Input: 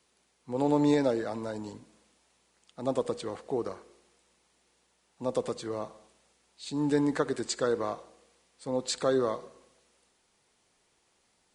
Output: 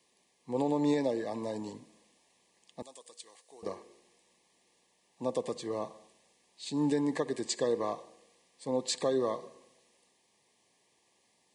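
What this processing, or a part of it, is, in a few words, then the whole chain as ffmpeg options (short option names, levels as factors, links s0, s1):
PA system with an anti-feedback notch: -filter_complex "[0:a]highpass=120,asuperstop=centerf=1400:order=12:qfactor=3.3,alimiter=limit=0.112:level=0:latency=1:release=399,asettb=1/sr,asplit=3[s0][s1][s2];[s0]atrim=end=2.824[s3];[s1]atrim=start=2.82:end=3.63,asetpts=PTS-STARTPTS,afade=t=in:d=0.004:c=qsin,afade=t=out:st=0.806:d=0.004:c=qsin,aderivative[s4];[s2]atrim=start=3.626[s5];[s3][s4]acrossfade=d=0.004:c1=hsin:c2=qsin[s6];[s6][s5]acrossfade=d=0.004:c1=qsin:c2=hsin"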